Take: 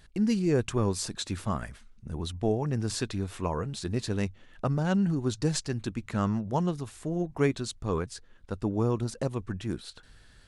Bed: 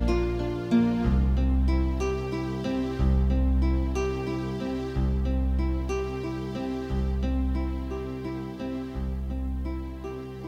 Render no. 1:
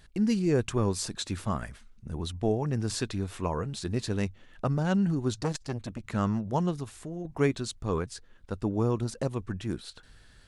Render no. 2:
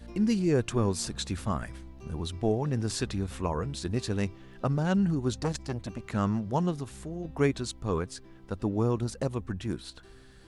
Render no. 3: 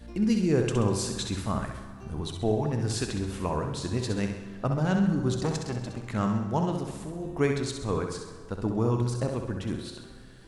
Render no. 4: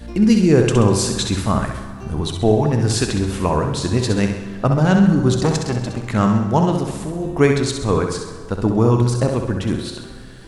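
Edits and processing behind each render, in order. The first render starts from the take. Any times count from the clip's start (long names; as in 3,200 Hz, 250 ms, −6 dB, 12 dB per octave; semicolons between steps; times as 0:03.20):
0:05.39–0:06.12: saturating transformer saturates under 650 Hz; 0:06.84–0:07.25: downward compressor 2 to 1, threshold −39 dBFS
mix in bed −21 dB
flutter between parallel walls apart 11.2 metres, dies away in 0.6 s; dense smooth reverb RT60 2.1 s, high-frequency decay 0.65×, pre-delay 0 ms, DRR 9 dB
level +11 dB; brickwall limiter −1 dBFS, peak gain reduction 0.5 dB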